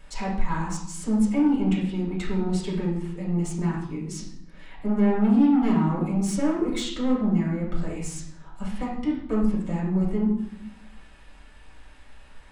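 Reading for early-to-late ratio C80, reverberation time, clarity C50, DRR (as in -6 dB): 7.0 dB, 0.75 s, 3.0 dB, -8.0 dB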